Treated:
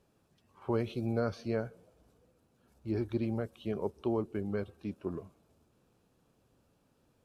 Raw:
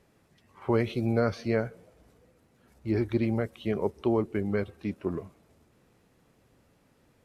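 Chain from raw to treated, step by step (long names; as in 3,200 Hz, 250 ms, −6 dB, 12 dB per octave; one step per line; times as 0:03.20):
parametric band 2,000 Hz −11 dB 0.31 octaves
level −6 dB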